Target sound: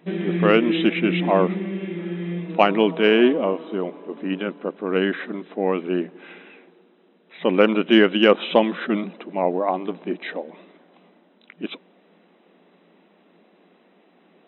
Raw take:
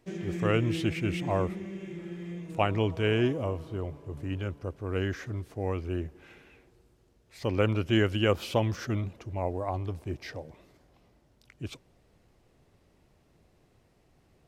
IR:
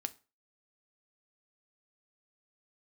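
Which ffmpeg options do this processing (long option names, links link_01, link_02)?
-af "afftfilt=real='re*between(b*sr/4096,170,4000)':imag='im*between(b*sr/4096,170,4000)':win_size=4096:overlap=0.75,acontrast=54,volume=5dB"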